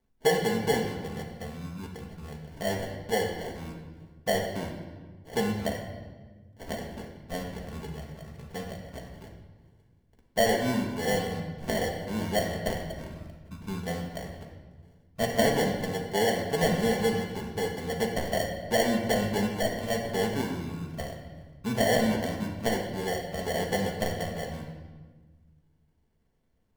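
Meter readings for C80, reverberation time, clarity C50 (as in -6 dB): 7.0 dB, 1.4 s, 4.5 dB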